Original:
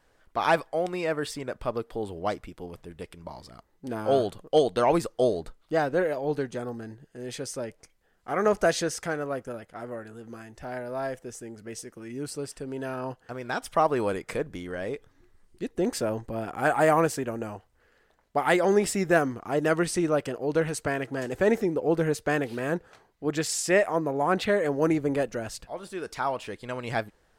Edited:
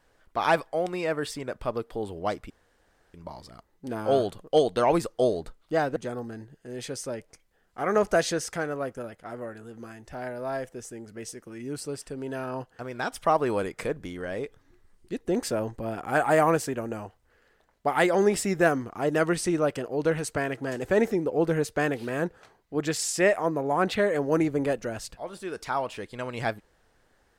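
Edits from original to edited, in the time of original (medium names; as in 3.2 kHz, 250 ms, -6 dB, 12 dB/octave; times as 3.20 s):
2.50–3.14 s: room tone
5.96–6.46 s: delete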